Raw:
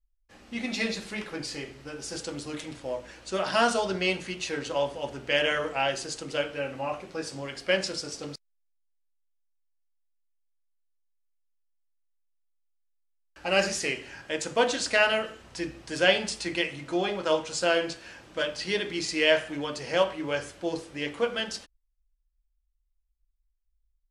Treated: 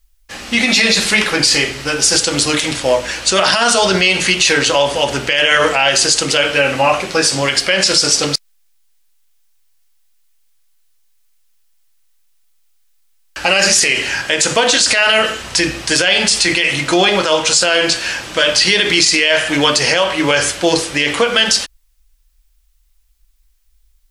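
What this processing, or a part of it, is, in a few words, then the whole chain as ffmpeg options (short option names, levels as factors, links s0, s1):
mastering chain: -af "equalizer=f=310:t=o:w=0.77:g=-1.5,acompressor=threshold=0.0447:ratio=3,tiltshelf=f=1300:g=-5.5,alimiter=level_in=16.8:limit=0.891:release=50:level=0:latency=1,volume=0.891"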